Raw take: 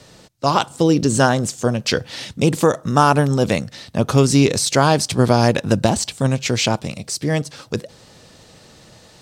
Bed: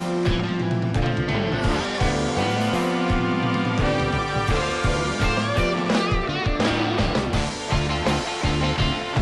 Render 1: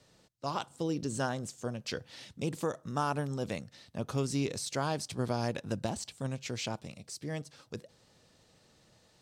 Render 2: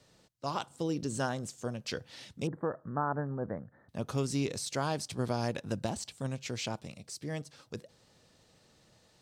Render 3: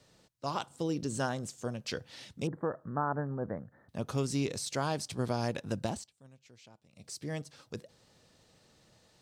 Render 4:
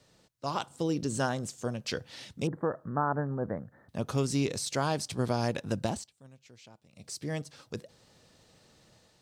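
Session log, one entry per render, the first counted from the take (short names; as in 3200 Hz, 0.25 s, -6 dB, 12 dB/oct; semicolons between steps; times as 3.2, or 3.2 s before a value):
gain -18 dB
2.47–3.89 elliptic low-pass 1700 Hz
5.94–7.06 dip -21 dB, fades 0.14 s
AGC gain up to 3 dB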